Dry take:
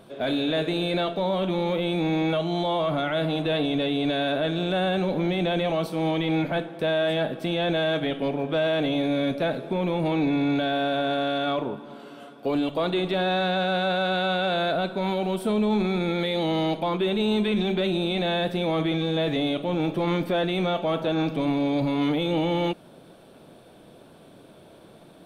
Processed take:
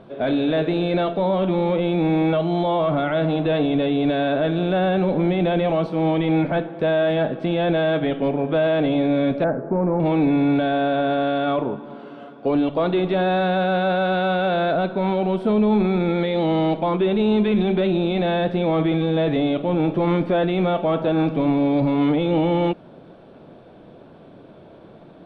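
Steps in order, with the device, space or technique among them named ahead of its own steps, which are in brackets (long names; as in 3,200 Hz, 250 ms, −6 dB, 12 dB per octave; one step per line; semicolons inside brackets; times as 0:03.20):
0:09.44–0:10.00: Butterworth low-pass 1,700 Hz 36 dB per octave
phone in a pocket (low-pass filter 3,900 Hz 12 dB per octave; high-shelf EQ 2,200 Hz −9.5 dB)
level +5.5 dB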